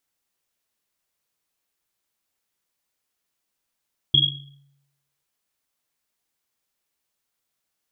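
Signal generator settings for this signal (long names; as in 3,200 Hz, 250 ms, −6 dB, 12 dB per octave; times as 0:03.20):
drum after Risset, pitch 140 Hz, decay 0.91 s, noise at 3,300 Hz, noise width 130 Hz, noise 75%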